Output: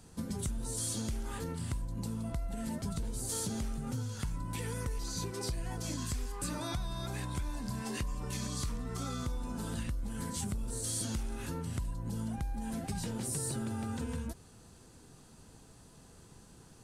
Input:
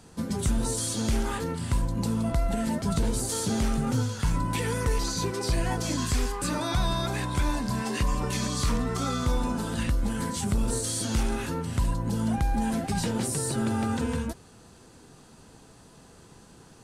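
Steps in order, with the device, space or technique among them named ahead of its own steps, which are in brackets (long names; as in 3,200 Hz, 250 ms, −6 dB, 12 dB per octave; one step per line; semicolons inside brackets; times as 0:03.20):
ASMR close-microphone chain (low-shelf EQ 150 Hz +7.5 dB; downward compressor, threshold −26 dBFS, peak gain reduction 11 dB; high-shelf EQ 6,600 Hz +7.5 dB)
level −7.5 dB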